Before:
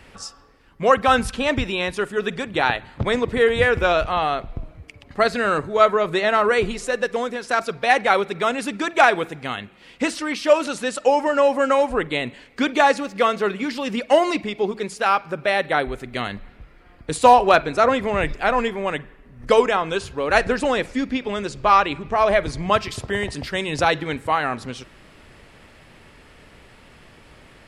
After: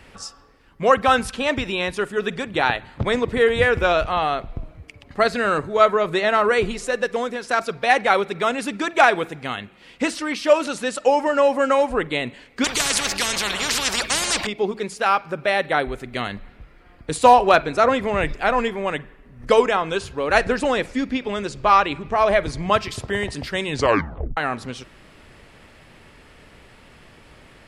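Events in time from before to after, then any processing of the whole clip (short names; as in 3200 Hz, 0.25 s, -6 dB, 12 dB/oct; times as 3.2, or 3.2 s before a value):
1.1–1.67 low shelf 160 Hz -7.5 dB
12.64–14.47 spectral compressor 10:1
23.71 tape stop 0.66 s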